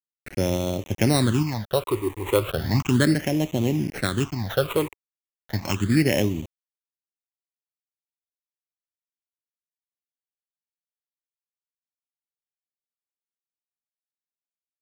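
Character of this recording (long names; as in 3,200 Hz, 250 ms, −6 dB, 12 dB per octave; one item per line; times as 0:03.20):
a quantiser's noise floor 6 bits, dither none
sample-and-hold tremolo
aliases and images of a low sample rate 4,800 Hz, jitter 0%
phaser sweep stages 8, 0.35 Hz, lowest notch 190–1,500 Hz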